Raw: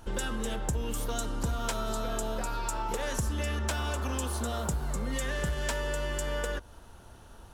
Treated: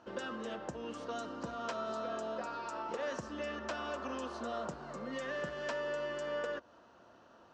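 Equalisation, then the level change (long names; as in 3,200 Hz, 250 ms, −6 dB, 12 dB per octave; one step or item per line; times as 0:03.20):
high-frequency loss of the air 52 metres
loudspeaker in its box 370–6,100 Hz, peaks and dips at 420 Hz −8 dB, 850 Hz −9 dB, 1,500 Hz −4 dB, 2,200 Hz −6 dB, 3,500 Hz −6 dB
high-shelf EQ 2,700 Hz −11 dB
+2.5 dB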